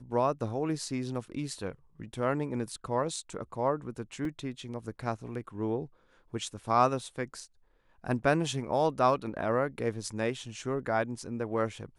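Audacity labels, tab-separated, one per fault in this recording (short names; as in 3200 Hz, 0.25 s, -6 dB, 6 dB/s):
4.250000	4.250000	gap 2 ms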